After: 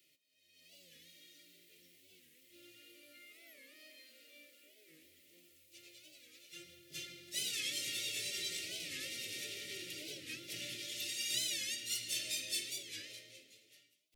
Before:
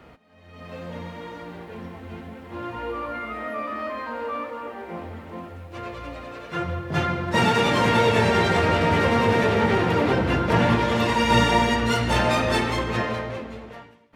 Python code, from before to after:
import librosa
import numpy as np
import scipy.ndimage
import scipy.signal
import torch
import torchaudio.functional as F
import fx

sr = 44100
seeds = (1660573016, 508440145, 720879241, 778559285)

y = scipy.signal.sosfilt(scipy.signal.ellip(3, 1.0, 40, [540.0, 1600.0], 'bandstop', fs=sr, output='sos'), x)
y = np.diff(y, prepend=0.0)
y = fx.fixed_phaser(y, sr, hz=320.0, stages=8)
y = fx.record_warp(y, sr, rpm=45.0, depth_cents=160.0)